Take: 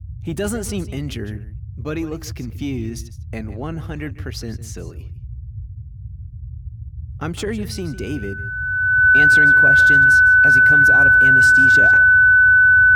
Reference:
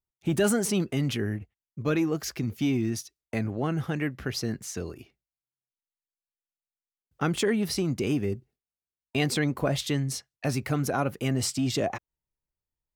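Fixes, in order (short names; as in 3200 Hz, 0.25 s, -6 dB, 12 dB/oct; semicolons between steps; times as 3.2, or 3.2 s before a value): notch 1500 Hz, Q 30; noise print and reduce 30 dB; inverse comb 0.154 s -15.5 dB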